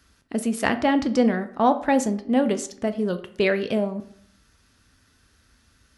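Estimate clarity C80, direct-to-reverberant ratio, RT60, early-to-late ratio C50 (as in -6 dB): 17.5 dB, 9.0 dB, 0.65 s, 14.0 dB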